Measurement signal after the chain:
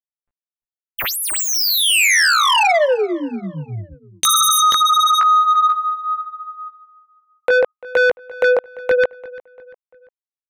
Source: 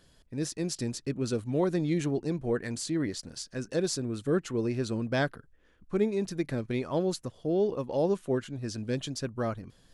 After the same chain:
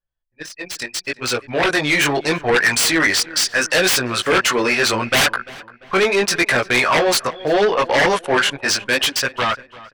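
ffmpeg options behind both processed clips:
-filter_complex "[0:a]flanger=delay=16:depth=5.2:speed=0.75,acrossover=split=630[s0][s1];[s1]aeval=exprs='0.0891*sin(PI/2*7.94*val(0)/0.0891)':c=same[s2];[s0][s2]amix=inputs=2:normalize=0,dynaudnorm=f=600:g=5:m=5.01,equalizer=f=2200:t=o:w=2.3:g=8,anlmdn=10000,asoftclip=type=tanh:threshold=0.668,bandreject=f=6800:w=20,adynamicequalizer=threshold=0.0562:dfrequency=3900:dqfactor=3:tfrequency=3900:tqfactor=3:attack=5:release=100:ratio=0.375:range=3:mode=cutabove:tftype=bell,agate=range=0.447:threshold=0.00708:ratio=16:detection=peak,asplit=2[s3][s4];[s4]adelay=344,lowpass=f=2900:p=1,volume=0.112,asplit=2[s5][s6];[s6]adelay=344,lowpass=f=2900:p=1,volume=0.43,asplit=2[s7][s8];[s8]adelay=344,lowpass=f=2900:p=1,volume=0.43[s9];[s3][s5][s7][s9]amix=inputs=4:normalize=0,volume=0.562"

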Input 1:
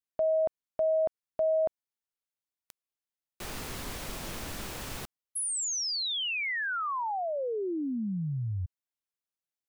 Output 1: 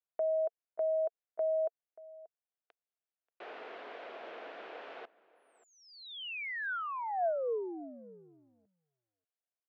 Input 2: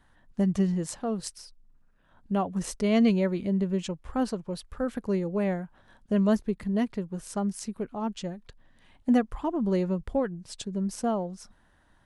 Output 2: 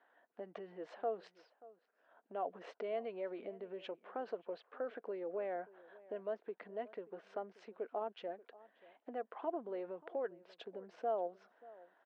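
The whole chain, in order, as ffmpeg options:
-filter_complex "[0:a]acompressor=threshold=0.0316:ratio=12:attack=3.7:release=78:knee=1:detection=rms,highpass=f=340:w=0.5412,highpass=f=340:w=1.3066,equalizer=f=460:t=q:w=4:g=7,equalizer=f=680:t=q:w=4:g=10,equalizer=f=1500:t=q:w=4:g=4,lowpass=f=3000:w=0.5412,lowpass=f=3000:w=1.3066,asplit=2[s0][s1];[s1]adelay=583.1,volume=0.1,highshelf=f=4000:g=-13.1[s2];[s0][s2]amix=inputs=2:normalize=0,volume=0.447"

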